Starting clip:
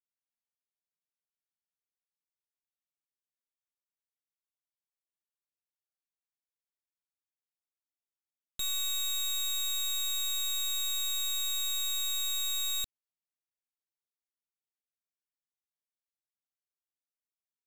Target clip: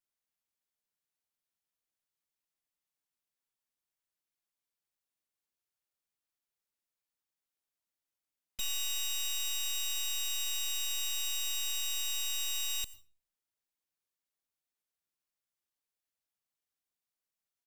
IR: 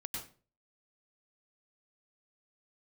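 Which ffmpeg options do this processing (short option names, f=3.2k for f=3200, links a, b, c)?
-filter_complex "[0:a]asplit=4[a][b][c][d];[b]asetrate=29433,aresample=44100,atempo=1.49831,volume=-14dB[e];[c]asetrate=33038,aresample=44100,atempo=1.33484,volume=-5dB[f];[d]asetrate=35002,aresample=44100,atempo=1.25992,volume=-9dB[g];[a][e][f][g]amix=inputs=4:normalize=0,alimiter=level_in=6dB:limit=-24dB:level=0:latency=1,volume=-6dB,asplit=2[h][i];[1:a]atrim=start_sample=2205,highshelf=f=7.8k:g=10.5[j];[i][j]afir=irnorm=-1:irlink=0,volume=-17dB[k];[h][k]amix=inputs=2:normalize=0"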